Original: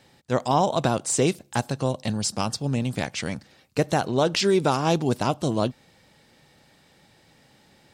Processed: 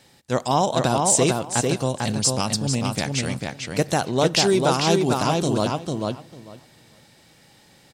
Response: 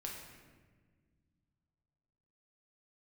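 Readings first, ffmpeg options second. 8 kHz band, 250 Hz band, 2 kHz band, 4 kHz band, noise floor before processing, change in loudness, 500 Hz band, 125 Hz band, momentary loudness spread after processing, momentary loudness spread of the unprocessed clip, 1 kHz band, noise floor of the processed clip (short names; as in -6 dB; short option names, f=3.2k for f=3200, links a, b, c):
+7.5 dB, +2.5 dB, +3.5 dB, +5.5 dB, -59 dBFS, +3.0 dB, +2.5 dB, +2.5 dB, 10 LU, 8 LU, +2.5 dB, -55 dBFS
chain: -filter_complex "[0:a]equalizer=f=11k:t=o:w=2.2:g=7.5,asplit=2[a][b];[b]adelay=447,lowpass=f=4.3k:p=1,volume=-3dB,asplit=2[c][d];[d]adelay=447,lowpass=f=4.3k:p=1,volume=0.16,asplit=2[e][f];[f]adelay=447,lowpass=f=4.3k:p=1,volume=0.16[g];[a][c][e][g]amix=inputs=4:normalize=0,asplit=2[h][i];[1:a]atrim=start_sample=2205[j];[i][j]afir=irnorm=-1:irlink=0,volume=-19dB[k];[h][k]amix=inputs=2:normalize=0"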